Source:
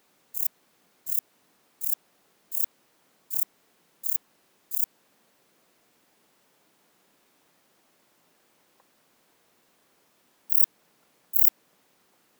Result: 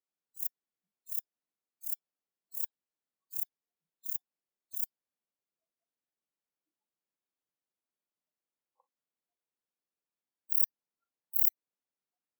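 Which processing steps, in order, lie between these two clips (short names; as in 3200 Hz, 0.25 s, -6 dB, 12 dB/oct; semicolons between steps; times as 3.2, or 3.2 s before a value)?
spectral noise reduction 27 dB; gain -7 dB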